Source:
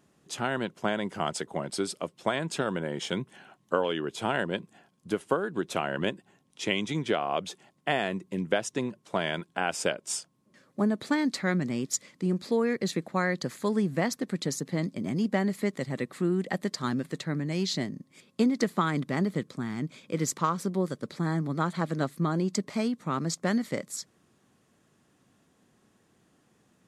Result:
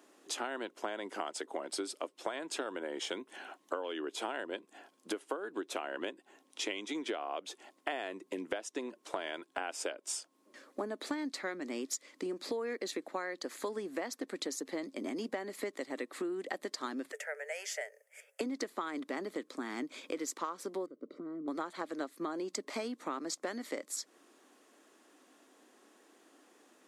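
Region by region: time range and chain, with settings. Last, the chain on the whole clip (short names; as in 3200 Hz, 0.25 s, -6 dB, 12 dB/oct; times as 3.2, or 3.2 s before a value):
17.12–18.41 rippled Chebyshev high-pass 420 Hz, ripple 6 dB + high shelf 6800 Hz +9.5 dB + fixed phaser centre 1100 Hz, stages 6
20.86–21.48 compressor 5:1, threshold -35 dBFS + running mean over 52 samples
whole clip: Chebyshev high-pass 280 Hz, order 4; compressor 6:1, threshold -41 dBFS; gain +5.5 dB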